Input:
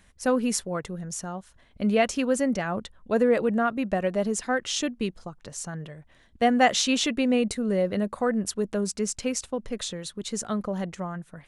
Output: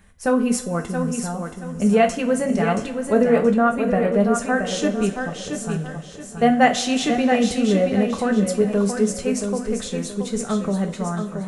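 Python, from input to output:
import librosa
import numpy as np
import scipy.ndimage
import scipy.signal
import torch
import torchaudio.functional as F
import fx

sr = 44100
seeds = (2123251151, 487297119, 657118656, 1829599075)

y = fx.peak_eq(x, sr, hz=4700.0, db=-7.5, octaves=1.9)
y = fx.echo_feedback(y, sr, ms=676, feedback_pct=31, wet_db=-6.5)
y = fx.rev_double_slope(y, sr, seeds[0], early_s=0.3, late_s=3.6, knee_db=-21, drr_db=3.0)
y = y * 10.0 ** (4.0 / 20.0)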